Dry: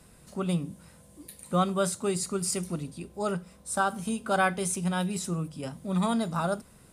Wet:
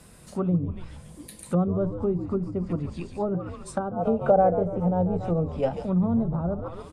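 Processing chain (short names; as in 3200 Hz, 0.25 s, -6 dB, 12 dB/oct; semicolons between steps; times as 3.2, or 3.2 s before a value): frequency-shifting echo 0.14 s, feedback 52%, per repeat -83 Hz, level -10.5 dB; treble ducked by the level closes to 450 Hz, closed at -25 dBFS; spectral gain 3.96–5.86, 430–910 Hz +11 dB; gain +4.5 dB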